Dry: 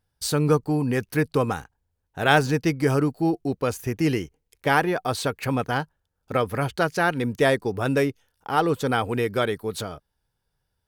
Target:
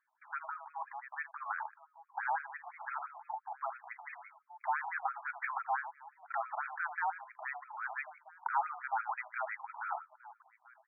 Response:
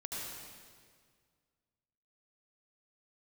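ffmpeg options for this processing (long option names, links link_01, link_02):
-filter_complex "[0:a]equalizer=frequency=800:width=2.5:gain=7,acompressor=threshold=-24dB:ratio=6,alimiter=limit=-24dB:level=0:latency=1:release=32,asplit=2[link_01][link_02];[link_02]adelay=1283,volume=-18dB,highshelf=frequency=4000:gain=-28.9[link_03];[link_01][link_03]amix=inputs=2:normalize=0,highpass=frequency=550:width_type=q:width=0.5412,highpass=frequency=550:width_type=q:width=1.307,lowpass=frequency=3200:width_type=q:width=0.5176,lowpass=frequency=3200:width_type=q:width=0.7071,lowpass=frequency=3200:width_type=q:width=1.932,afreqshift=63,asplit=2[link_04][link_05];[link_05]aecho=0:1:80:0.266[link_06];[link_04][link_06]amix=inputs=2:normalize=0,afftfilt=real='re*between(b*sr/1024,860*pow(1800/860,0.5+0.5*sin(2*PI*5.9*pts/sr))/1.41,860*pow(1800/860,0.5+0.5*sin(2*PI*5.9*pts/sr))*1.41)':imag='im*between(b*sr/1024,860*pow(1800/860,0.5+0.5*sin(2*PI*5.9*pts/sr))/1.41,860*pow(1800/860,0.5+0.5*sin(2*PI*5.9*pts/sr))*1.41)':win_size=1024:overlap=0.75,volume=4.5dB"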